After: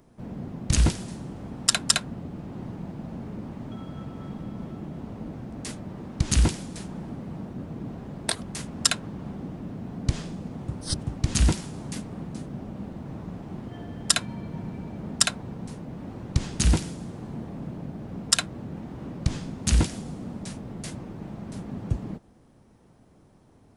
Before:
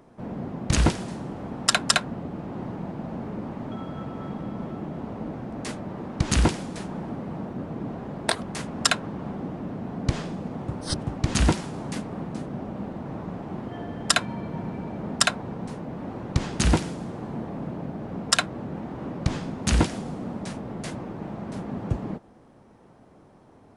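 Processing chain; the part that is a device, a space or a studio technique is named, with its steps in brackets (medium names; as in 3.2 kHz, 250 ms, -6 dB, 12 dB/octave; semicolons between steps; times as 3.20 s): smiley-face EQ (bass shelf 100 Hz +5.5 dB; peaking EQ 840 Hz -6 dB 2.9 oct; treble shelf 5.3 kHz +6.5 dB); trim -2 dB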